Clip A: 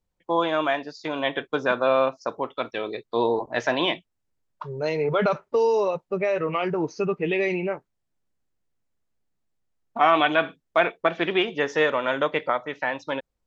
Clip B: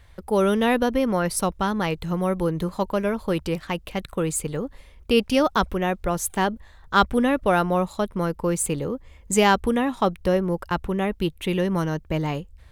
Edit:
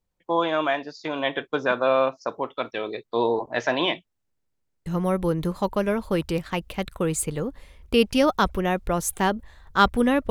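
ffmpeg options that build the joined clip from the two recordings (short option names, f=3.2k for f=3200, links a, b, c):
-filter_complex "[0:a]apad=whole_dur=10.3,atrim=end=10.3,asplit=4[a][b][c][d];[a]atrim=end=4.412[e];[b]atrim=start=4.258:end=4.412[f];[c]atrim=start=4.258:end=4.412[g];[d]atrim=start=4.258:end=4.412[h];[1:a]atrim=start=2.028:end=7.47[i];[e][f]acrossfade=d=0.004:c1=hsin:c2=hsin[j];[j][g]acrossfade=d=0.004:c1=hsin:c2=hsin[k];[k][h]acrossfade=d=0.004:c1=hsin:c2=hsin[l];[l][i]acrossfade=d=0.004:c1=hsin:c2=hsin"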